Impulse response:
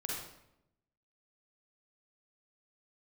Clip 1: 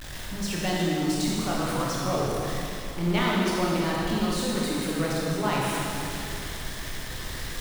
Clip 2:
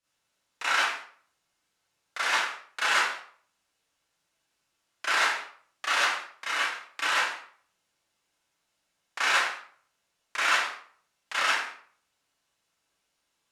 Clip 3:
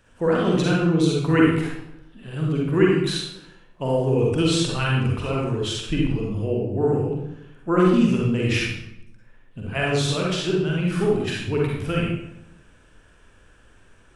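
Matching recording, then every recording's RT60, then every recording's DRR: 3; 2.9, 0.50, 0.85 seconds; −5.5, −11.0, −4.0 decibels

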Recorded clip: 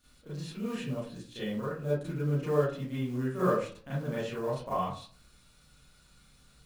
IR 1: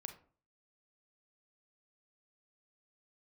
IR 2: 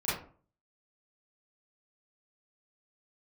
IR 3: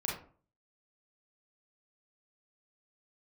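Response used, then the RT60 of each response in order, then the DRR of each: 2; 0.45, 0.45, 0.45 seconds; 6.5, −11.5, −3.5 decibels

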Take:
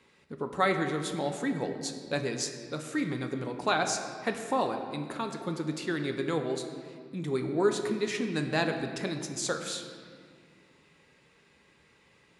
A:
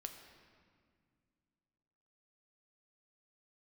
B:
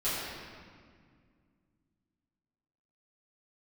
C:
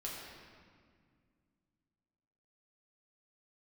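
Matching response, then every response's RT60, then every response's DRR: A; 2.0, 1.9, 2.0 seconds; 5.0, −13.0, −5.0 decibels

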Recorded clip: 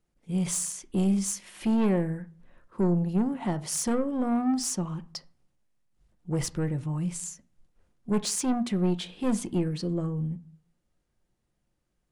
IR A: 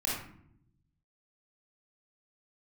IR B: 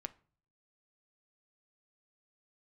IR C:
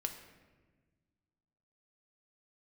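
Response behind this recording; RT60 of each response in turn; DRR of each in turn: B; 0.70, 0.45, 1.4 seconds; −5.0, 10.0, 4.5 decibels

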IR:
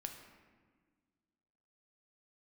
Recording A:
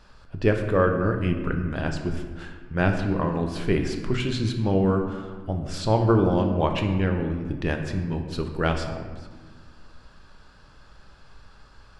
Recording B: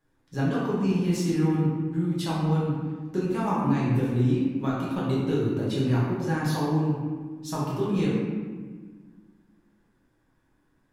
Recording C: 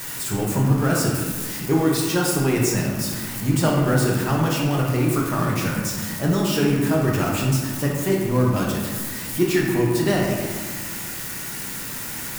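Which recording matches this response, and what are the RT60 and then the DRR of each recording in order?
A; 1.6, 1.5, 1.6 seconds; 4.0, −7.0, −3.0 decibels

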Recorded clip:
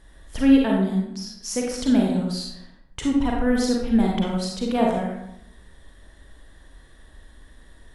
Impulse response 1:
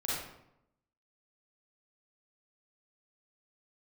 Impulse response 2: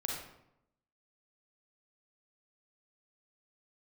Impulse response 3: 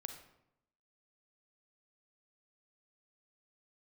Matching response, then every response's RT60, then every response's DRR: 2; 0.80, 0.80, 0.80 seconds; −7.5, −1.5, 6.0 decibels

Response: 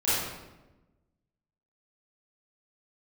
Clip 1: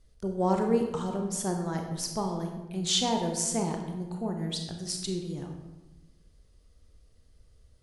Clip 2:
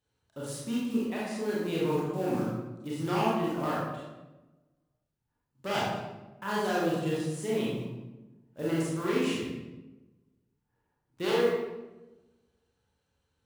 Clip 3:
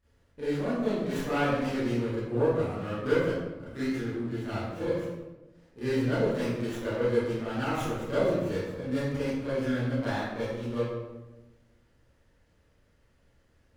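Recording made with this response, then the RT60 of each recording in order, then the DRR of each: 3; 1.1, 1.1, 1.1 seconds; 3.0, −7.0, −13.5 decibels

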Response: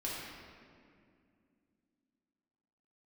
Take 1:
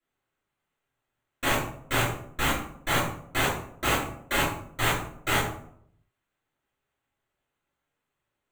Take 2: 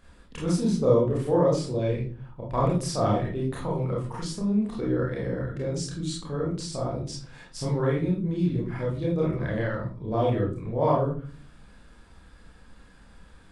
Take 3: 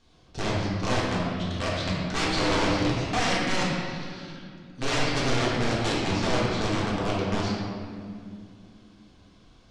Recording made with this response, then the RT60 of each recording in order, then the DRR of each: 3; 0.65, 0.45, 2.3 seconds; −9.0, −4.5, −7.0 decibels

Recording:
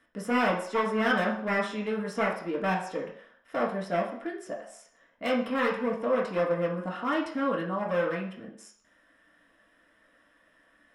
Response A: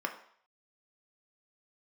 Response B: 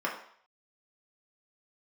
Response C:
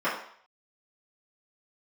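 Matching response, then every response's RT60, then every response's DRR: B; 0.60, 0.60, 0.60 seconds; 3.0, −3.5, −13.0 decibels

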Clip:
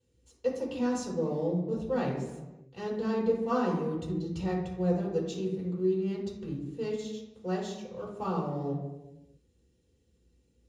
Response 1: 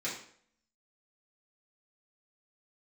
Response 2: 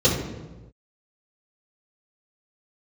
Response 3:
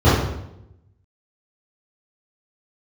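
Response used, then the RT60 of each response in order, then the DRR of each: 2; 0.55 s, non-exponential decay, 0.85 s; −8.0, −13.0, −14.5 decibels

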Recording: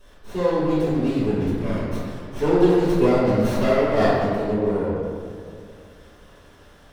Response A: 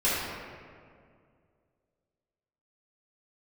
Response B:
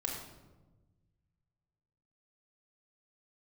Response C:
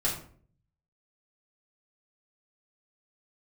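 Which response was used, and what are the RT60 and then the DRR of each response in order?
A; 2.2, 1.2, 0.50 seconds; −11.0, −0.5, −6.5 decibels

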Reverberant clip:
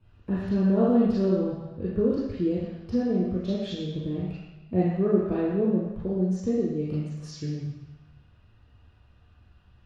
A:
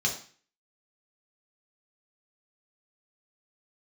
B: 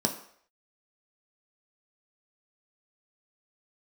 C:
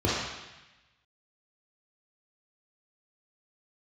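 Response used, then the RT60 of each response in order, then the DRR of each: C; 0.40, 0.60, 1.0 seconds; −1.0, 2.0, −6.0 decibels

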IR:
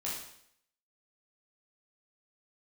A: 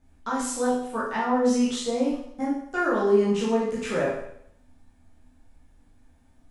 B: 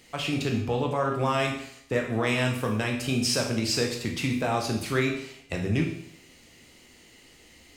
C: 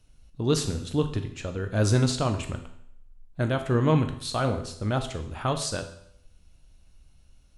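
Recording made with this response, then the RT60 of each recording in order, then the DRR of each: A; 0.70, 0.70, 0.70 seconds; −6.5, 0.5, 6.5 decibels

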